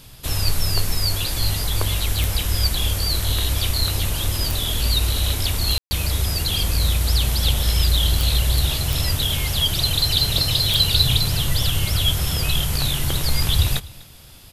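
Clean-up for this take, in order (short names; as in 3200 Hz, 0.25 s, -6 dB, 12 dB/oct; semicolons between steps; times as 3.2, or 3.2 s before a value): de-click; room tone fill 5.78–5.91; inverse comb 0.248 s -22 dB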